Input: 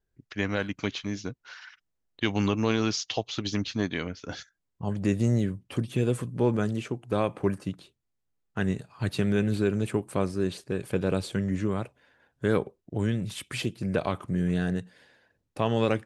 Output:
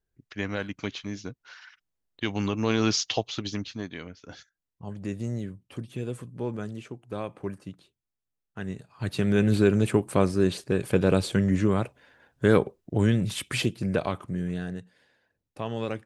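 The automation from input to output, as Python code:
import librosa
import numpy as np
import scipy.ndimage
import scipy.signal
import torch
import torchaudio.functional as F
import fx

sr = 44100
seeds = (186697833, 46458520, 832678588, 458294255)

y = fx.gain(x, sr, db=fx.line((2.52, -2.5), (2.99, 5.0), (3.85, -7.5), (8.64, -7.5), (9.53, 5.0), (13.55, 5.0), (14.72, -6.5)))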